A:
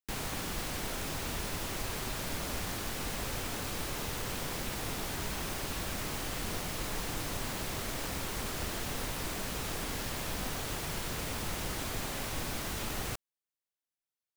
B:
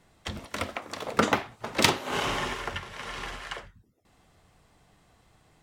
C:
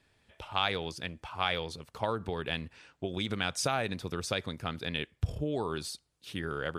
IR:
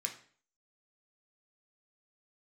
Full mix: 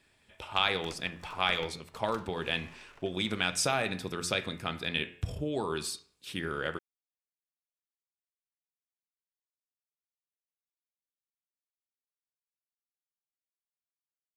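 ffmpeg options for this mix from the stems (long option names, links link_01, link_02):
-filter_complex "[1:a]aeval=exprs='if(lt(val(0),0),0.251*val(0),val(0))':channel_layout=same,acompressor=threshold=-39dB:ratio=2,adelay=300,volume=-9.5dB,afade=type=out:start_time=1.61:duration=0.29:silence=0.446684[link_01];[2:a]bandreject=frequency=87.42:width_type=h:width=4,bandreject=frequency=174.84:width_type=h:width=4,bandreject=frequency=262.26:width_type=h:width=4,bandreject=frequency=349.68:width_type=h:width=4,bandreject=frequency=437.1:width_type=h:width=4,bandreject=frequency=524.52:width_type=h:width=4,bandreject=frequency=611.94:width_type=h:width=4,bandreject=frequency=699.36:width_type=h:width=4,bandreject=frequency=786.78:width_type=h:width=4,bandreject=frequency=874.2:width_type=h:width=4,bandreject=frequency=961.62:width_type=h:width=4,bandreject=frequency=1049.04:width_type=h:width=4,bandreject=frequency=1136.46:width_type=h:width=4,bandreject=frequency=1223.88:width_type=h:width=4,bandreject=frequency=1311.3:width_type=h:width=4,bandreject=frequency=1398.72:width_type=h:width=4,bandreject=frequency=1486.14:width_type=h:width=4,bandreject=frequency=1573.56:width_type=h:width=4,bandreject=frequency=1660.98:width_type=h:width=4,bandreject=frequency=1748.4:width_type=h:width=4,bandreject=frequency=1835.82:width_type=h:width=4,bandreject=frequency=1923.24:width_type=h:width=4,bandreject=frequency=2010.66:width_type=h:width=4,bandreject=frequency=2098.08:width_type=h:width=4,bandreject=frequency=2185.5:width_type=h:width=4,bandreject=frequency=2272.92:width_type=h:width=4,bandreject=frequency=2360.34:width_type=h:width=4,bandreject=frequency=2447.76:width_type=h:width=4,bandreject=frequency=2535.18:width_type=h:width=4,bandreject=frequency=2622.6:width_type=h:width=4,bandreject=frequency=2710.02:width_type=h:width=4,bandreject=frequency=2797.44:width_type=h:width=4,bandreject=frequency=2884.86:width_type=h:width=4,volume=0.5dB,asplit=2[link_02][link_03];[link_03]volume=-6dB[link_04];[3:a]atrim=start_sample=2205[link_05];[link_04][link_05]afir=irnorm=-1:irlink=0[link_06];[link_01][link_02][link_06]amix=inputs=3:normalize=0"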